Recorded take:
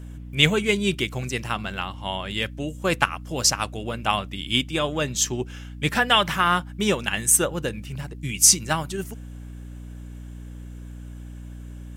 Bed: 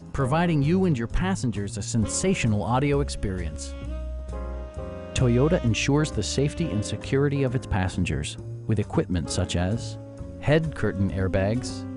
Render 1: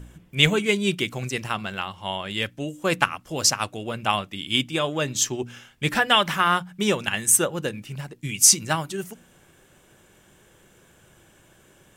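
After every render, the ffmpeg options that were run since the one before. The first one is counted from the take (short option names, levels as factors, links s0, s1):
-af "bandreject=f=60:t=h:w=4,bandreject=f=120:t=h:w=4,bandreject=f=180:t=h:w=4,bandreject=f=240:t=h:w=4,bandreject=f=300:t=h:w=4"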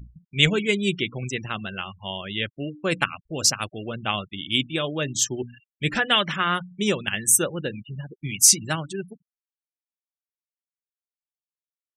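-af "afftfilt=real='re*gte(hypot(re,im),0.0251)':imag='im*gte(hypot(re,im),0.0251)':win_size=1024:overlap=0.75,equalizer=f=900:t=o:w=0.94:g=-7"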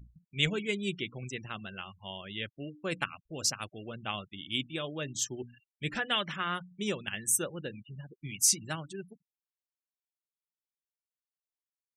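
-af "volume=0.316"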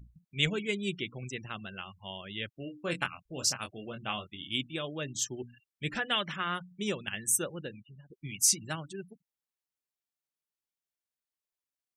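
-filter_complex "[0:a]asettb=1/sr,asplit=3[s0][s1][s2];[s0]atrim=end=2.534[s3];[s1]atrim=start=2.53:end=4.51,asetpts=PTS-STARTPTS,afade=t=in:d=0.004:c=qsin,afade=t=out:st=1.976:d=0.004:c=qsin,asplit=2[s4][s5];[s5]adelay=23,volume=0.501[s6];[s4][s6]amix=inputs=2:normalize=0,atrim=end_sample=87318[s7];[s2]atrim=start=4.506[s8];[s3][s7]acrossfade=d=0.004:c1=hsin:c2=qsin[s9];[s9][s8]acrossfade=d=0.004:c1=qsin:c2=hsin,asplit=2[s10][s11];[s10]atrim=end=8.1,asetpts=PTS-STARTPTS,afade=t=out:st=7.56:d=0.54:silence=0.199526[s12];[s11]atrim=start=8.1,asetpts=PTS-STARTPTS,afade=t=in:d=0.004:c=hsin:silence=0.199526[s13];[s12][s13]concat=n=2:v=0:a=1"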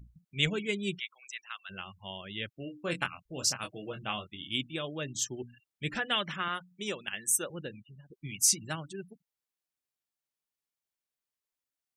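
-filter_complex "[0:a]asplit=3[s0][s1][s2];[s0]afade=t=out:st=0.98:d=0.02[s3];[s1]highpass=f=1100:w=0.5412,highpass=f=1100:w=1.3066,afade=t=in:st=0.98:d=0.02,afade=t=out:st=1.69:d=0.02[s4];[s2]afade=t=in:st=1.69:d=0.02[s5];[s3][s4][s5]amix=inputs=3:normalize=0,asettb=1/sr,asplit=3[s6][s7][s8];[s6]atrim=end=3.634[s9];[s7]atrim=start=3.63:end=4.04,asetpts=PTS-STARTPTS,afade=t=in:d=0.004:c=qsin,afade=t=out:st=0.406:d=0.004:c=qsin,aecho=1:1:6.3:0.65,atrim=end_sample=18081[s10];[s8]atrim=start=4.036[s11];[s9][s10]acrossfade=d=0.004:c1=hsin:c2=qsin[s12];[s12][s11]acrossfade=d=0.004:c1=qsin:c2=hsin,asettb=1/sr,asplit=3[s13][s14][s15];[s13]atrim=end=6.484[s16];[s14]atrim=start=6.48:end=7.5,asetpts=PTS-STARTPTS,afade=t=in:d=0.004:c=qsin,afade=t=out:st=1.016:d=0.004:c=qsin,highpass=f=390:p=1[s17];[s15]atrim=start=7.496[s18];[s16][s17]acrossfade=d=0.004:c1=hsin:c2=qsin[s19];[s19][s18]acrossfade=d=0.004:c1=qsin:c2=hsin"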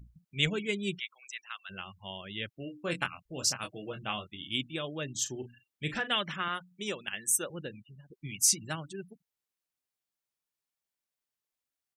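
-filter_complex "[0:a]asplit=3[s0][s1][s2];[s0]afade=t=out:st=5.24:d=0.02[s3];[s1]asplit=2[s4][s5];[s5]adelay=39,volume=0.266[s6];[s4][s6]amix=inputs=2:normalize=0,afade=t=in:st=5.24:d=0.02,afade=t=out:st=6.09:d=0.02[s7];[s2]afade=t=in:st=6.09:d=0.02[s8];[s3][s7][s8]amix=inputs=3:normalize=0"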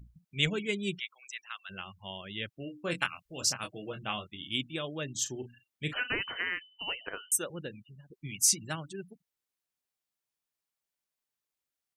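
-filter_complex "[0:a]asettb=1/sr,asplit=3[s0][s1][s2];[s0]atrim=end=2.984[s3];[s1]atrim=start=2.98:end=3.41,asetpts=PTS-STARTPTS,afade=t=in:d=0.004:c=qsin,afade=t=out:st=0.426:d=0.004:c=qsin,tiltshelf=f=970:g=-4.5[s4];[s2]atrim=start=3.406[s5];[s3][s4]acrossfade=d=0.004:c1=hsin:c2=qsin[s6];[s6][s5]acrossfade=d=0.004:c1=qsin:c2=hsin,asettb=1/sr,asplit=3[s7][s8][s9];[s7]atrim=end=5.934[s10];[s8]atrim=start=5.93:end=7.32,asetpts=PTS-STARTPTS,afade=t=in:d=0.004:c=qsin,afade=t=out:st=1.386:d=0.004:c=qsin,lowpass=f=2700:t=q:w=0.5098,lowpass=f=2700:t=q:w=0.6013,lowpass=f=2700:t=q:w=0.9,lowpass=f=2700:t=q:w=2.563,afreqshift=-3200[s11];[s9]atrim=start=7.316[s12];[s10][s11]acrossfade=d=0.004:c1=hsin:c2=qsin[s13];[s13][s12]acrossfade=d=0.004:c1=qsin:c2=hsin"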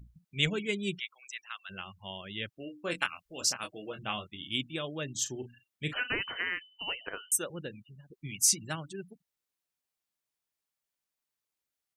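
-filter_complex "[0:a]asettb=1/sr,asplit=3[s0][s1][s2];[s0]atrim=end=2.564[s3];[s1]atrim=start=2.56:end=3.99,asetpts=PTS-STARTPTS,afade=t=in:d=0.004:c=qsin,afade=t=out:st=1.426:d=0.004:c=qsin,equalizer=f=130:w=1.5:g=-9.5[s4];[s2]atrim=start=3.986[s5];[s3][s4]acrossfade=d=0.004:c1=hsin:c2=qsin[s6];[s6][s5]acrossfade=d=0.004:c1=qsin:c2=hsin"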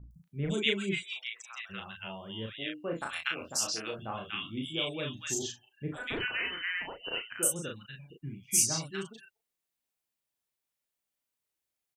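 -filter_complex "[0:a]asplit=2[s0][s1];[s1]adelay=36,volume=0.708[s2];[s0][s2]amix=inputs=2:normalize=0,acrossover=split=1300|5100[s3][s4][s5];[s5]adelay=110[s6];[s4]adelay=240[s7];[s3][s7][s6]amix=inputs=3:normalize=0"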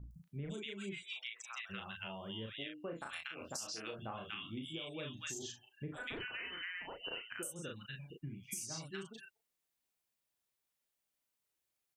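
-af "alimiter=limit=0.0668:level=0:latency=1:release=243,acompressor=threshold=0.00891:ratio=6"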